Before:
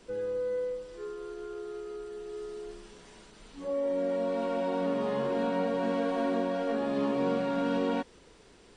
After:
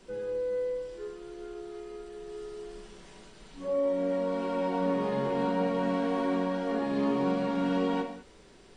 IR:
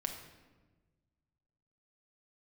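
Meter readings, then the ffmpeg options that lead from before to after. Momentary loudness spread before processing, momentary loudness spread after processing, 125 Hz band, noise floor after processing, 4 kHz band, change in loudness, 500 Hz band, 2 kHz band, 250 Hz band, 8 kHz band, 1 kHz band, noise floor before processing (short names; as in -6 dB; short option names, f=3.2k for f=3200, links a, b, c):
12 LU, 14 LU, +4.0 dB, -55 dBFS, +0.5 dB, +1.5 dB, 0.0 dB, +0.5 dB, +2.0 dB, n/a, +1.5 dB, -57 dBFS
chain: -filter_complex "[1:a]atrim=start_sample=2205,afade=t=out:st=0.26:d=0.01,atrim=end_sample=11907[a];[0:a][a]afir=irnorm=-1:irlink=0"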